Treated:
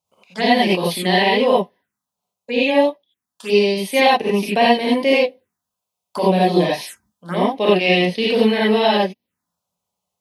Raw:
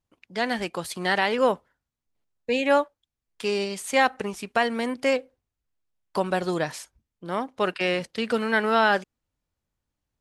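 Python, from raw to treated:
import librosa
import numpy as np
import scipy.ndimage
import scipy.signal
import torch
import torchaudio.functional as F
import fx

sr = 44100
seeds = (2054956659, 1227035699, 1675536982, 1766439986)

y = scipy.signal.sosfilt(scipy.signal.butter(2, 200.0, 'highpass', fs=sr, output='sos'), x)
y = fx.rev_gated(y, sr, seeds[0], gate_ms=110, shape='rising', drr_db=-6.5)
y = fx.env_phaser(y, sr, low_hz=290.0, high_hz=1400.0, full_db=-22.0)
y = fx.rider(y, sr, range_db=10, speed_s=0.5)
y = F.gain(torch.from_numpy(y), 5.5).numpy()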